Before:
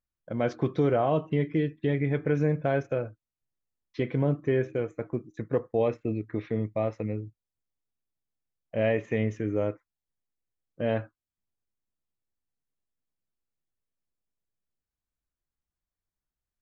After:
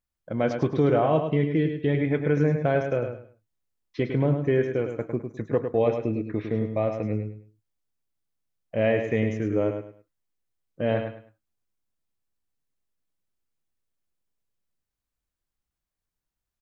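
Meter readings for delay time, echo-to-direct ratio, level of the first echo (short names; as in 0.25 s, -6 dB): 0.104 s, -6.5 dB, -7.0 dB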